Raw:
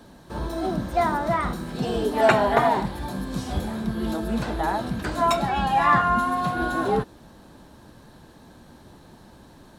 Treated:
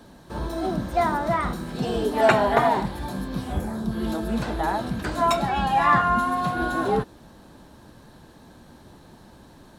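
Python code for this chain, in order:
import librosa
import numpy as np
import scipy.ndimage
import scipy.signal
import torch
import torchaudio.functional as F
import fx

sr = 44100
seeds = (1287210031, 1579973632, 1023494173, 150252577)

y = fx.peak_eq(x, sr, hz=fx.line((3.26, 9700.0), (3.91, 1900.0)), db=-12.5, octaves=0.76, at=(3.26, 3.91), fade=0.02)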